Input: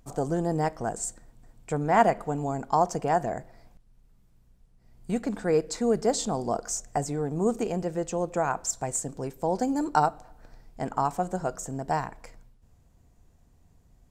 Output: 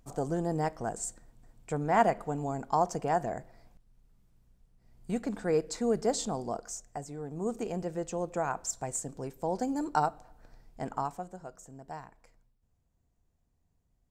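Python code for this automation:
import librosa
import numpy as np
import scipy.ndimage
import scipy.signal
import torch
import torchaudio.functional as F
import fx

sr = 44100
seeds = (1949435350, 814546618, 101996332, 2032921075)

y = fx.gain(x, sr, db=fx.line((6.23, -4.0), (7.04, -12.0), (7.76, -5.0), (10.94, -5.0), (11.36, -15.0)))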